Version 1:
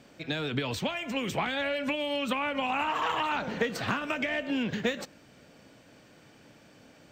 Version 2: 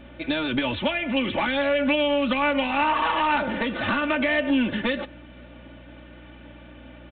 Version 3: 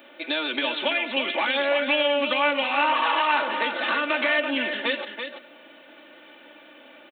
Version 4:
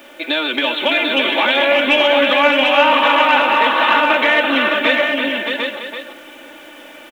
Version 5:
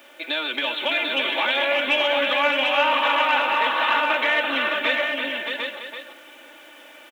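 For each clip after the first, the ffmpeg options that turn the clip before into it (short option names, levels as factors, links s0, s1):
-af "aresample=8000,asoftclip=type=tanh:threshold=0.0531,aresample=44100,aecho=1:1:3.4:0.76,aeval=exprs='val(0)+0.00224*(sin(2*PI*60*n/s)+sin(2*PI*2*60*n/s)/2+sin(2*PI*3*60*n/s)/3+sin(2*PI*4*60*n/s)/4+sin(2*PI*5*60*n/s)/5)':c=same,volume=2.11"
-af "highpass=f=290:w=0.5412,highpass=f=290:w=1.3066,aemphasis=mode=production:type=bsi,aecho=1:1:334:0.422"
-af "acontrast=65,acrusher=bits=9:dc=4:mix=0:aa=0.000001,aecho=1:1:614|743:0.531|0.596,volume=1.19"
-af "lowshelf=f=320:g=-11.5,volume=0.501"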